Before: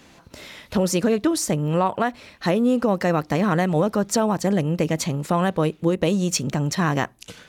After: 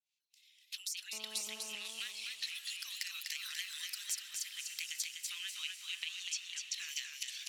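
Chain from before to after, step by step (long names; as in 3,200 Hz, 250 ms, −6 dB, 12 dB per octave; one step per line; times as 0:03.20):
fade in at the beginning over 2.47 s
0:05.43–0:06.74: low-pass filter 4,000 Hz 12 dB per octave
reverb reduction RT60 0.89 s
Butterworth high-pass 2,500 Hz 36 dB per octave
noise gate −54 dBFS, range −13 dB
transient designer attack +7 dB, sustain +11 dB
downward compressor 6 to 1, threshold −44 dBFS, peak gain reduction 27 dB
feedback delay with all-pass diffusion 587 ms, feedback 43%, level −9.5 dB
0:01.13–0:01.75: phone interference −60 dBFS
feedback echo with a swinging delay time 247 ms, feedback 35%, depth 60 cents, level −4.5 dB
level +4.5 dB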